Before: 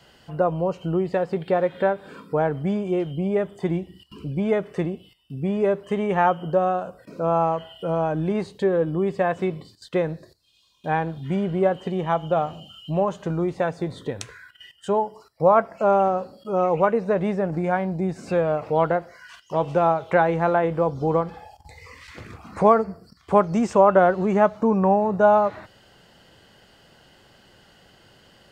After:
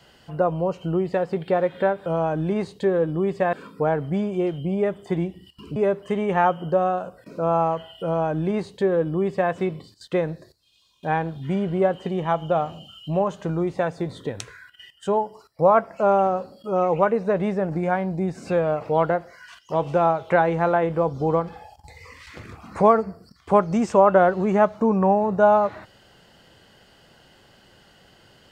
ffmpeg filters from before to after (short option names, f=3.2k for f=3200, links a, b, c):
-filter_complex "[0:a]asplit=4[a][b][c][d];[a]atrim=end=2.062[e];[b]atrim=start=7.848:end=9.322[f];[c]atrim=start=2.058:end=4.292[g];[d]atrim=start=5.568[h];[e][f]acrossfade=d=0.004:c1=hsin:c2=hsin[i];[i][g]acrossfade=d=0.004:c1=hsin:c2=hsin[j];[j][h]acrossfade=d=0.004:c1=hsin:c2=hsin"